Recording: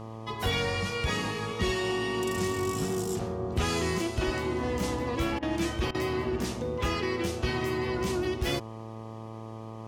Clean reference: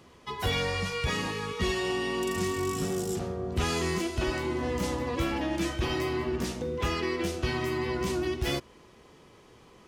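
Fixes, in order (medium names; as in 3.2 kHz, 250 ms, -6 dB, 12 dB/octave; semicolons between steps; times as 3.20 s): de-hum 111.3 Hz, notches 11; interpolate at 5.39/5.91 s, 34 ms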